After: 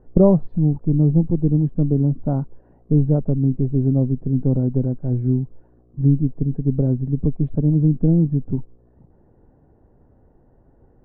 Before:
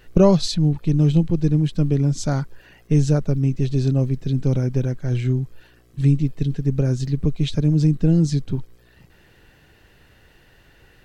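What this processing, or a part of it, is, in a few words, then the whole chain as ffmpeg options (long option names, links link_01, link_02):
under water: -af "lowpass=frequency=870:width=0.5412,lowpass=frequency=870:width=1.3066,equalizer=frequency=250:width_type=o:width=0.34:gain=6"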